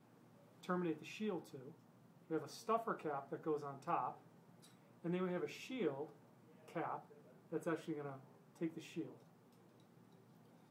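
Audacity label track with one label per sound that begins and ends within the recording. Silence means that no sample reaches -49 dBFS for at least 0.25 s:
0.640000	1.700000	sound
2.300000	4.130000	sound
5.040000	6.060000	sound
6.680000	6.990000	sound
7.520000	8.170000	sound
8.610000	9.130000	sound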